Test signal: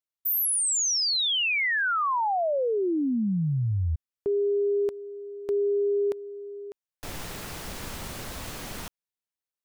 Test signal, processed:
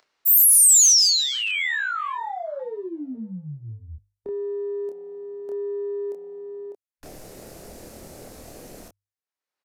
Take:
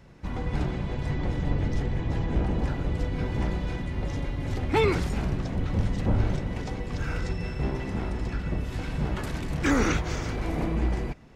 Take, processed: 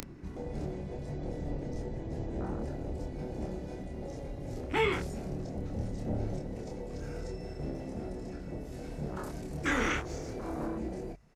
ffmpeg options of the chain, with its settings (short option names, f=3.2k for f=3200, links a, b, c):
-filter_complex "[0:a]acrossover=split=3800[a][b];[a]acompressor=mode=upward:threshold=-28dB:ratio=2.5:attack=38:release=601:knee=2.83:detection=peak[c];[c][b]amix=inputs=2:normalize=0,equalizer=f=3.3k:t=o:w=0.62:g=-6,aresample=32000,aresample=44100,afwtdn=0.0251,acrossover=split=240|1500[d][e][f];[e]acompressor=threshold=-46dB:ratio=1.5:attack=0.29:release=20:knee=2.83:detection=peak[g];[d][g][f]amix=inputs=3:normalize=0,bass=f=250:g=-13,treble=f=4k:g=10,bandreject=f=50:t=h:w=6,bandreject=f=100:t=h:w=6,asplit=2[h][i];[i]adelay=27,volume=-3dB[j];[h][j]amix=inputs=2:normalize=0"